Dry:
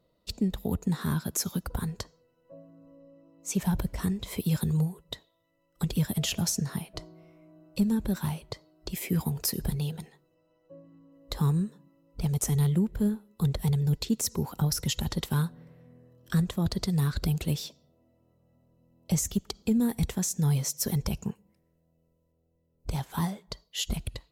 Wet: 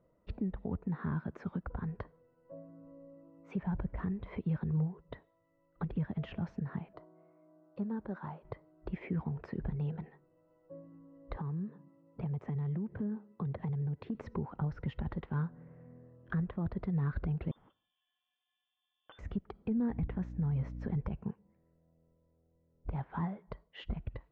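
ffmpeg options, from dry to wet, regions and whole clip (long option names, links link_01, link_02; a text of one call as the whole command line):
ffmpeg -i in.wav -filter_complex "[0:a]asettb=1/sr,asplit=3[link_01][link_02][link_03];[link_01]atrim=end=6.934[link_04];[link_02]atrim=start=6.93:end=8.45,asetpts=PTS-STARTPTS,afade=type=in:duration=0.004:curve=qsin,afade=type=out:start_time=1.516:duration=0.004:curve=qsin,highpass=frequency=770:poles=1,equalizer=frequency=2500:width_type=o:width=1.2:gain=-11.5[link_05];[link_03]atrim=start=8.446[link_06];[link_04][link_05]acrossfade=duration=0.004:curve1=hsin:curve2=qsin[link_07];[link_07][link_06]acrossfade=duration=0.004:curve1=qsin:curve2=hsin,asettb=1/sr,asplit=3[link_08][link_09][link_10];[link_08]atrim=end=11.364[link_11];[link_09]atrim=start=11.36:end=14.15,asetpts=PTS-STARTPTS,afade=type=in:duration=0.004:curve=qsin,afade=type=out:start_time=2.786:duration=0.004:curve=qsin,highpass=frequency=93:width=0.5412,highpass=frequency=93:width=1.3066,acompressor=threshold=-32dB:ratio=12:attack=3.2:release=140:knee=1:detection=peak,bandreject=frequency=1400:width=13[link_12];[link_10]atrim=start=14.146[link_13];[link_11][link_12]acrossfade=duration=0.004:curve1=hsin:curve2=qsin[link_14];[link_14][link_13]acrossfade=duration=0.004:curve1=qsin:curve2=hsin,asettb=1/sr,asplit=3[link_15][link_16][link_17];[link_15]atrim=end=17.514[link_18];[link_16]atrim=start=17.51:end=19.19,asetpts=PTS-STARTPTS,afade=type=in:duration=0.004:curve=qsin,afade=type=out:start_time=1.676:duration=0.004:curve=qsin,highpass=160,acompressor=threshold=-44dB:ratio=3:attack=3.2:release=140:knee=1:detection=peak,lowpass=frequency=3100:width_type=q:width=0.5098,lowpass=frequency=3100:width_type=q:width=0.6013,lowpass=frequency=3100:width_type=q:width=0.9,lowpass=frequency=3100:width_type=q:width=2.563,afreqshift=-3700[link_19];[link_17]atrim=start=19.186[link_20];[link_18][link_19]acrossfade=duration=0.004:curve1=hsin:curve2=qsin[link_21];[link_21][link_20]acrossfade=duration=0.004:curve1=qsin:curve2=hsin,asettb=1/sr,asplit=3[link_22][link_23][link_24];[link_22]atrim=end=19.904[link_25];[link_23]atrim=start=19.9:end=20.98,asetpts=PTS-STARTPTS,afade=type=in:duration=0.004:curve=qsin,afade=type=out:start_time=1.076:duration=0.004:curve=qsin,lowshelf=frequency=110:gain=9,acompressor=threshold=-23dB:ratio=3:attack=3.2:release=140:knee=1:detection=peak,aeval=exprs='val(0)+0.0126*(sin(2*PI*60*n/s)+sin(2*PI*2*60*n/s)/2+sin(2*PI*3*60*n/s)/3+sin(2*PI*4*60*n/s)/4+sin(2*PI*5*60*n/s)/5)':channel_layout=same[link_26];[link_24]atrim=start=20.976[link_27];[link_25][link_26]acrossfade=duration=0.004:curve1=hsin:curve2=qsin[link_28];[link_28][link_27]acrossfade=duration=0.004:curve1=qsin:curve2=hsin,lowpass=frequency=1900:width=0.5412,lowpass=frequency=1900:width=1.3066,alimiter=level_in=2dB:limit=-24dB:level=0:latency=1:release=422,volume=-2dB" out.wav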